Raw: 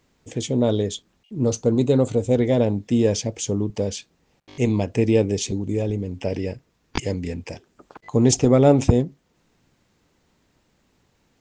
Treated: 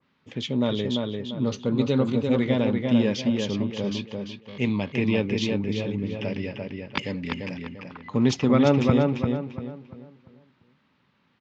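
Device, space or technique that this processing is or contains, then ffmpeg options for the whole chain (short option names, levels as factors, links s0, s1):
kitchen radio: -filter_complex "[0:a]highpass=160,equalizer=f=330:t=q:w=4:g=-8,equalizer=f=470:t=q:w=4:g=-8,equalizer=f=700:t=q:w=4:g=-9,equalizer=f=1200:t=q:w=4:g=3,lowpass=f=3900:w=0.5412,lowpass=f=3900:w=1.3066,asplit=2[s0][s1];[s1]adelay=344,lowpass=f=3400:p=1,volume=0.668,asplit=2[s2][s3];[s3]adelay=344,lowpass=f=3400:p=1,volume=0.35,asplit=2[s4][s5];[s5]adelay=344,lowpass=f=3400:p=1,volume=0.35,asplit=2[s6][s7];[s7]adelay=344,lowpass=f=3400:p=1,volume=0.35,asplit=2[s8][s9];[s9]adelay=344,lowpass=f=3400:p=1,volume=0.35[s10];[s0][s2][s4][s6][s8][s10]amix=inputs=6:normalize=0,adynamicequalizer=threshold=0.00631:dfrequency=1700:dqfactor=0.7:tfrequency=1700:tqfactor=0.7:attack=5:release=100:ratio=0.375:range=2:mode=boostabove:tftype=highshelf"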